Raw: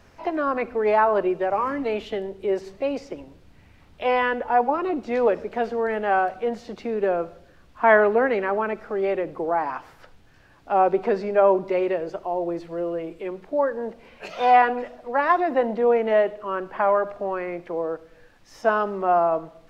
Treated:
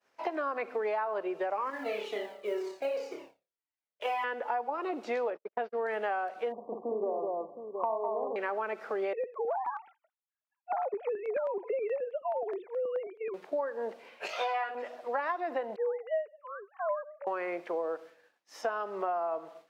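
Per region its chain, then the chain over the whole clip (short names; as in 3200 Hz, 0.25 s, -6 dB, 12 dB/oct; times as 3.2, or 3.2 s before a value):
1.7–4.24 G.711 law mismatch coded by A + flutter echo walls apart 5 m, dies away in 0.56 s + cascading flanger falling 2 Hz
5.3–5.86 gate -29 dBFS, range -49 dB + air absorption 230 m
6.52–8.36 brick-wall FIR low-pass 1200 Hz + dynamic EQ 500 Hz, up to -5 dB, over -33 dBFS, Q 4.5 + tapped delay 59/201/716 ms -5.5/-3/-11.5 dB
9.13–13.34 sine-wave speech + compressor, threshold -21 dBFS + LFO notch square 4.7 Hz 240–1600 Hz
14.27–14.75 HPF 620 Hz 6 dB/oct + doubler 18 ms -2.5 dB
15.76–17.27 sine-wave speech + upward expander, over -30 dBFS
whole clip: HPF 440 Hz 12 dB/oct; compressor 12:1, threshold -29 dBFS; expander -47 dBFS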